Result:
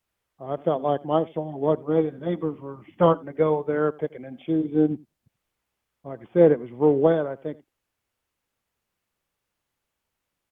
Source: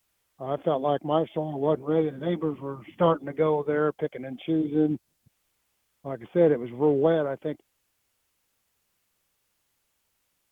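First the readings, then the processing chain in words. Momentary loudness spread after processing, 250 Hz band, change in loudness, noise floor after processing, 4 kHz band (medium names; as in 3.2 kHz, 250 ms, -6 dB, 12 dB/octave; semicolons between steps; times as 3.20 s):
17 LU, +2.0 dB, +2.5 dB, -82 dBFS, no reading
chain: treble shelf 3.3 kHz -9 dB; delay 84 ms -19.5 dB; upward expansion 1.5:1, over -31 dBFS; trim +5 dB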